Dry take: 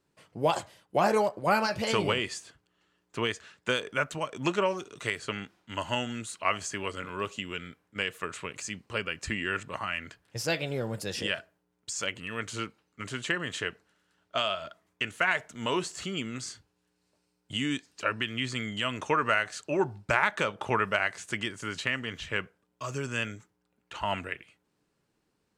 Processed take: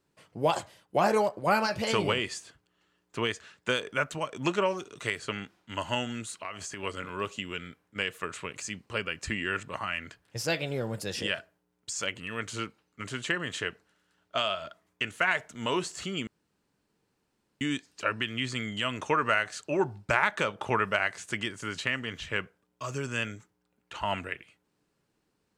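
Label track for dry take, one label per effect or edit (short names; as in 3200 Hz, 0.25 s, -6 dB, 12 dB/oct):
6.330000	6.830000	compressor 4:1, threshold -35 dBFS
16.270000	17.610000	room tone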